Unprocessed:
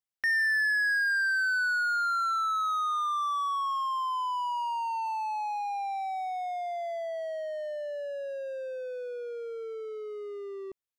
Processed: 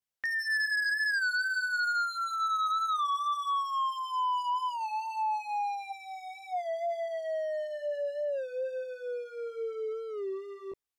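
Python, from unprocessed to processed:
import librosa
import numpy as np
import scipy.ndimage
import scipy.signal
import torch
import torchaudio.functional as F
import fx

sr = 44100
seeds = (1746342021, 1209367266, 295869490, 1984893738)

p1 = fx.spec_box(x, sr, start_s=5.9, length_s=0.63, low_hz=220.0, high_hz=1500.0, gain_db=-12)
p2 = fx.chorus_voices(p1, sr, voices=2, hz=0.57, base_ms=18, depth_ms=1.9, mix_pct=55)
p3 = fx.fold_sine(p2, sr, drive_db=9, ceiling_db=-20.0)
p4 = p2 + (p3 * 10.0 ** (-7.0 / 20.0))
p5 = fx.record_warp(p4, sr, rpm=33.33, depth_cents=100.0)
y = p5 * 10.0 ** (-5.0 / 20.0)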